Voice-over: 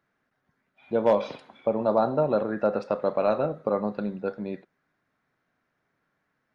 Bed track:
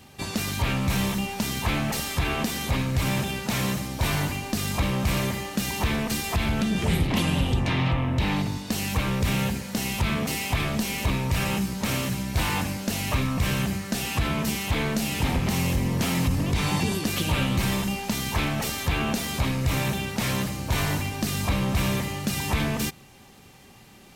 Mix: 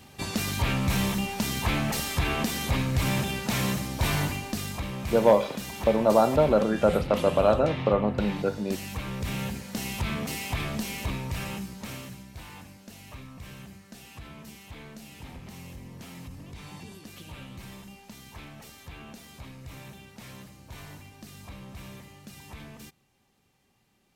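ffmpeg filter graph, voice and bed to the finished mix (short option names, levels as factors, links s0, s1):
-filter_complex "[0:a]adelay=4200,volume=1.33[s0];[1:a]volume=1.41,afade=t=out:st=4.24:d=0.58:silence=0.398107,afade=t=in:st=9.03:d=0.73:silence=0.630957,afade=t=out:st=10.8:d=1.6:silence=0.199526[s1];[s0][s1]amix=inputs=2:normalize=0"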